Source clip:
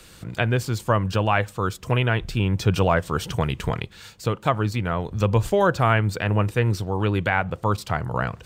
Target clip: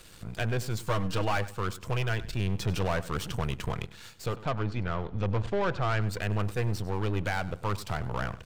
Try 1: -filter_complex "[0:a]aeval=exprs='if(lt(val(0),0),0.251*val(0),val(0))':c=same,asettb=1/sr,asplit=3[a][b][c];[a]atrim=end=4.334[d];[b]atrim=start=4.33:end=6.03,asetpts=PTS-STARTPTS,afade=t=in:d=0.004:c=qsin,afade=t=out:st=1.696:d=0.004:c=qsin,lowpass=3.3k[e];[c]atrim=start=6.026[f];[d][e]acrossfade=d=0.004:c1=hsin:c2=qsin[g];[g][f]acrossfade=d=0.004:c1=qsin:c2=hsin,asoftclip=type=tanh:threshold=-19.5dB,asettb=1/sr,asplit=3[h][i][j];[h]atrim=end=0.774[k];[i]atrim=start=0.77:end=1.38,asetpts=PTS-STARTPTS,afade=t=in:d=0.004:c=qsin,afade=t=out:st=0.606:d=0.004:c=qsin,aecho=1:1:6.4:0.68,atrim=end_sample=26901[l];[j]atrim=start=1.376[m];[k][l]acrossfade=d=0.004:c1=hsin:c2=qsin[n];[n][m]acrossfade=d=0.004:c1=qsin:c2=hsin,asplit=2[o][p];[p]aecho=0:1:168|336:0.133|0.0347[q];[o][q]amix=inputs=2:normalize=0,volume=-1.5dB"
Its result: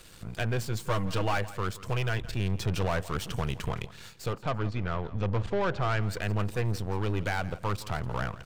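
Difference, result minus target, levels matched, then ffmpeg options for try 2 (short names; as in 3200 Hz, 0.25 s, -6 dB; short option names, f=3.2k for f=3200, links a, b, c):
echo 69 ms late
-filter_complex "[0:a]aeval=exprs='if(lt(val(0),0),0.251*val(0),val(0))':c=same,asettb=1/sr,asplit=3[a][b][c];[a]atrim=end=4.334[d];[b]atrim=start=4.33:end=6.03,asetpts=PTS-STARTPTS,afade=t=in:d=0.004:c=qsin,afade=t=out:st=1.696:d=0.004:c=qsin,lowpass=3.3k[e];[c]atrim=start=6.026[f];[d][e]acrossfade=d=0.004:c1=hsin:c2=qsin[g];[g][f]acrossfade=d=0.004:c1=qsin:c2=hsin,asoftclip=type=tanh:threshold=-19.5dB,asettb=1/sr,asplit=3[h][i][j];[h]atrim=end=0.774[k];[i]atrim=start=0.77:end=1.38,asetpts=PTS-STARTPTS,afade=t=in:d=0.004:c=qsin,afade=t=out:st=0.606:d=0.004:c=qsin,aecho=1:1:6.4:0.68,atrim=end_sample=26901[l];[j]atrim=start=1.376[m];[k][l]acrossfade=d=0.004:c1=hsin:c2=qsin[n];[n][m]acrossfade=d=0.004:c1=qsin:c2=hsin,asplit=2[o][p];[p]aecho=0:1:99|198:0.133|0.0347[q];[o][q]amix=inputs=2:normalize=0,volume=-1.5dB"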